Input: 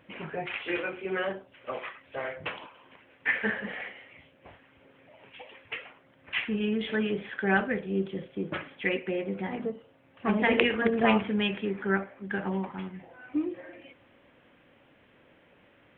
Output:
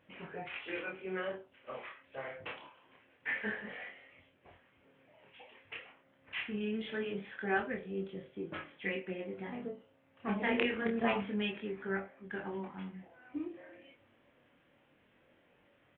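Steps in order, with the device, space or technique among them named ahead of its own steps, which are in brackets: double-tracked vocal (doubler 21 ms -11 dB; chorus 0.25 Hz, depth 7.5 ms); gain -5.5 dB

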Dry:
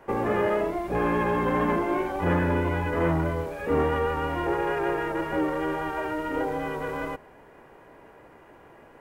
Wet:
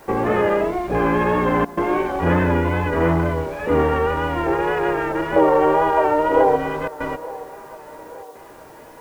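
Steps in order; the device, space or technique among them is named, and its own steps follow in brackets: worn cassette (LPF 8100 Hz; wow and flutter; level dips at 1.65/6.88/8.23, 0.121 s -19 dB; white noise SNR 34 dB); 5.36–6.56 band shelf 670 Hz +9 dB; band-limited delay 0.876 s, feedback 49%, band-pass 760 Hz, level -17 dB; gain +6 dB

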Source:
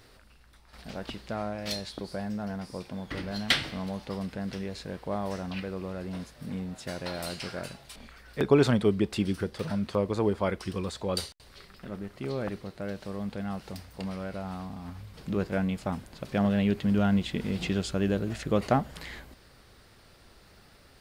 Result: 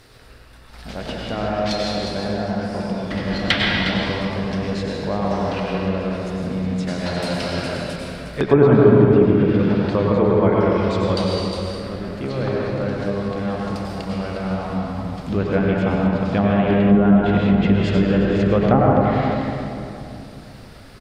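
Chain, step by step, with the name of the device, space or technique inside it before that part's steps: cave (echo 0.358 s -11 dB; reverb RT60 2.7 s, pre-delay 89 ms, DRR -3.5 dB); treble ducked by the level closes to 1400 Hz, closed at -16.5 dBFS; gain +6.5 dB

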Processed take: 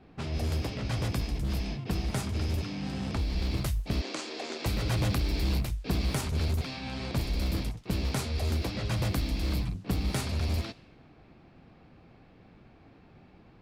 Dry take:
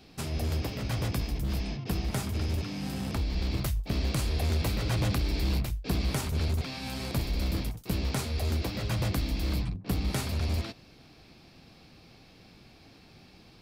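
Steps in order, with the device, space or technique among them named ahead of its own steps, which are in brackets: cassette deck with a dynamic noise filter (white noise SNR 32 dB; low-pass opened by the level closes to 1500 Hz, open at -25 dBFS); 4.01–4.66 elliptic band-pass 290–7200 Hz, stop band 50 dB

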